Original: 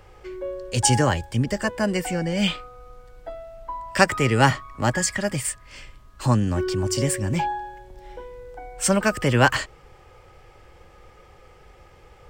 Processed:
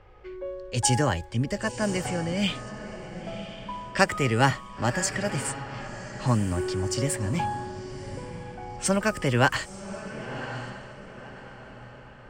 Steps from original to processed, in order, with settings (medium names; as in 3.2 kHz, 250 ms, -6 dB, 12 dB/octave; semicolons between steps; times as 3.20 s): echo that smears into a reverb 1049 ms, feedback 41%, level -11 dB; level-controlled noise filter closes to 2.9 kHz, open at -18.5 dBFS; trim -4 dB